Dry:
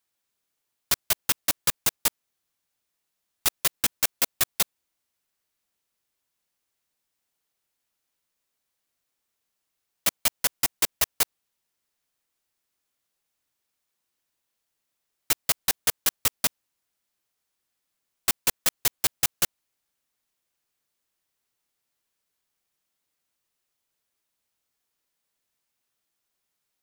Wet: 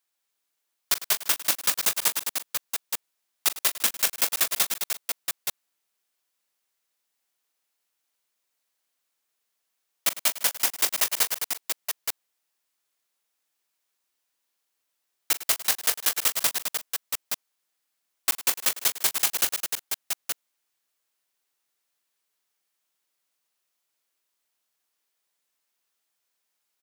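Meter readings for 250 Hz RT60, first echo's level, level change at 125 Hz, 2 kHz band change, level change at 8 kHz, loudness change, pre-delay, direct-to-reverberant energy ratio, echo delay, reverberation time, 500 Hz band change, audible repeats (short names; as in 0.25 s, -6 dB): none, -14.5 dB, n/a, +1.5 dB, +2.0 dB, 0.0 dB, none, none, 41 ms, none, -0.5 dB, 5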